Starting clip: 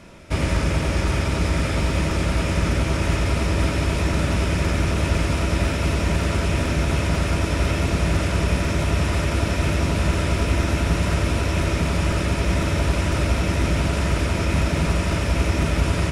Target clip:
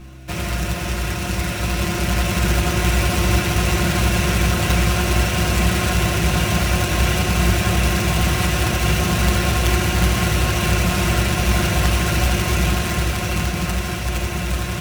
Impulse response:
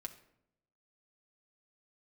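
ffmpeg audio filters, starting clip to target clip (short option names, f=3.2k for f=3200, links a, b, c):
-filter_complex "[0:a]highpass=f=44:w=0.5412,highpass=f=44:w=1.3066,equalizer=f=270:w=0.41:g=-5.5,dynaudnorm=f=260:g=17:m=6dB,acrusher=bits=2:mode=log:mix=0:aa=0.000001,aeval=exprs='val(0)+0.0158*(sin(2*PI*60*n/s)+sin(2*PI*2*60*n/s)/2+sin(2*PI*3*60*n/s)/3+sin(2*PI*4*60*n/s)/4+sin(2*PI*5*60*n/s)/5)':c=same,asetrate=48000,aresample=44100[a];[1:a]atrim=start_sample=2205[b];[a][b]afir=irnorm=-1:irlink=0,volume=3dB"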